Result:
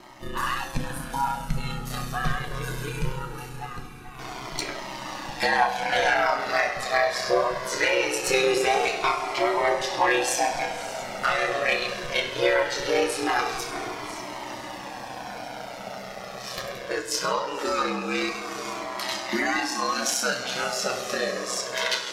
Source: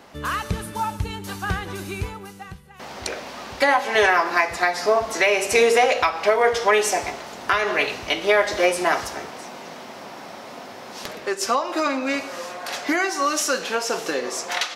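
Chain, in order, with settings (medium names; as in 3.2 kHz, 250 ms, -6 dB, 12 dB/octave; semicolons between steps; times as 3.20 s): dynamic bell 4.1 kHz, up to +4 dB, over -38 dBFS, Q 1.9; in parallel at -1 dB: compression, threshold -29 dBFS, peak gain reduction 15.5 dB; on the sum: granular stretch 1.5×, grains 67 ms; ring modulator 64 Hz; saturation -11 dBFS, distortion -18 dB; echo that smears into a reverb 560 ms, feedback 63%, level -14 dB; on a send at -6 dB: reverberation RT60 0.50 s, pre-delay 4 ms; on the sum: Shepard-style flanger falling 0.21 Hz; trim +2.5 dB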